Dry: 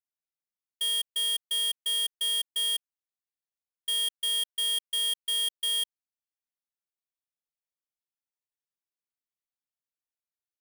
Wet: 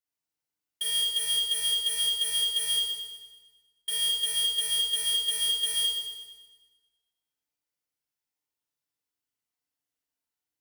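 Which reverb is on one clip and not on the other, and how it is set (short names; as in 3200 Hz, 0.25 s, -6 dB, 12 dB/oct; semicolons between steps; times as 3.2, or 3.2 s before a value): FDN reverb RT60 1.3 s, low-frequency decay 1.2×, high-frequency decay 0.95×, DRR -5.5 dB; gain -1.5 dB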